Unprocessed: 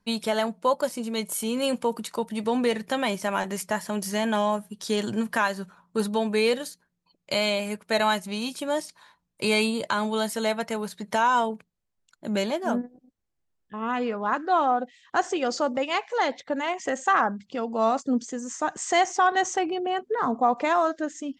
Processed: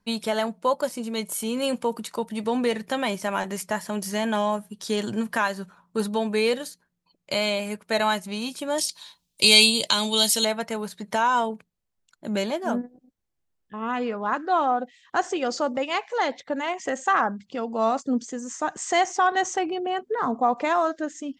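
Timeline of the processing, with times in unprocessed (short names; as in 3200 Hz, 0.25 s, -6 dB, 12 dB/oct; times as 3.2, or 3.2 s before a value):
8.78–10.45 resonant high shelf 2400 Hz +13 dB, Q 1.5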